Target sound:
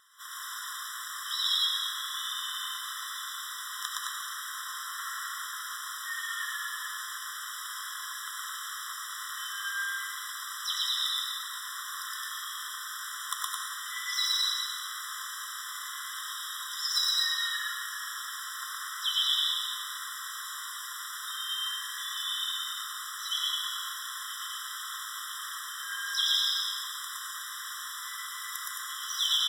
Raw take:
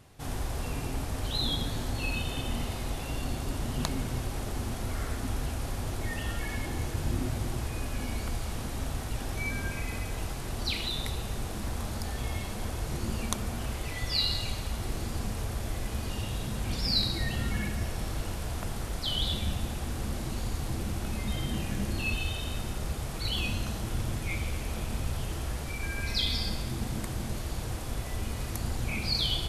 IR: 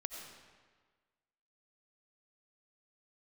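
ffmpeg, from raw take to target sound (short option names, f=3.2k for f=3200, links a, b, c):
-filter_complex "[0:a]highpass=f=650:p=1,aecho=1:1:116.6|215.7:0.891|0.631,asplit=2[a][b];[b]asetrate=58866,aresample=44100,atempo=0.749154,volume=-11dB[c];[a][c]amix=inputs=2:normalize=0[d];[1:a]atrim=start_sample=2205[e];[d][e]afir=irnorm=-1:irlink=0,aeval=exprs='clip(val(0),-1,0.0447)':c=same,afftfilt=real='re*eq(mod(floor(b*sr/1024/1000),2),1)':imag='im*eq(mod(floor(b*sr/1024/1000),2),1)':win_size=1024:overlap=0.75,volume=6.5dB"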